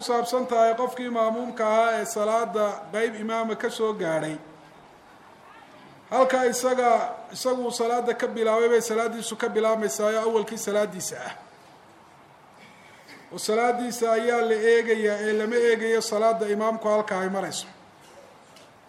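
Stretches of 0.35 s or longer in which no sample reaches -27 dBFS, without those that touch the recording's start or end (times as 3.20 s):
4.34–6.12 s
11.30–13.36 s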